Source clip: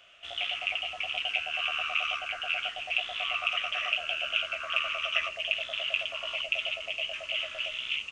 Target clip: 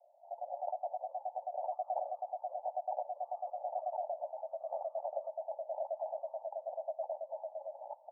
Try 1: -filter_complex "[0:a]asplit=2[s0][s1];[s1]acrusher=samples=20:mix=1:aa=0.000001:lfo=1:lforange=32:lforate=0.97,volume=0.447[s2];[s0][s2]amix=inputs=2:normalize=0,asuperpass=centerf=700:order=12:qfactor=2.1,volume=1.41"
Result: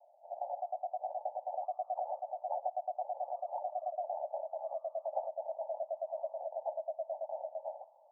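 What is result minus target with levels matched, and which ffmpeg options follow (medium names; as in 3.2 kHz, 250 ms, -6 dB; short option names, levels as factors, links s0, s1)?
decimation with a swept rate: distortion -17 dB
-filter_complex "[0:a]asplit=2[s0][s1];[s1]acrusher=samples=41:mix=1:aa=0.000001:lfo=1:lforange=65.6:lforate=0.97,volume=0.447[s2];[s0][s2]amix=inputs=2:normalize=0,asuperpass=centerf=700:order=12:qfactor=2.1,volume=1.41"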